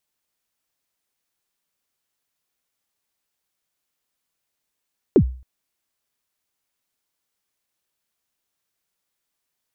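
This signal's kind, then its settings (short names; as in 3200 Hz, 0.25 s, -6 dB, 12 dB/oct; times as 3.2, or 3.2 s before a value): kick drum length 0.27 s, from 460 Hz, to 63 Hz, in 77 ms, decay 0.42 s, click off, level -6.5 dB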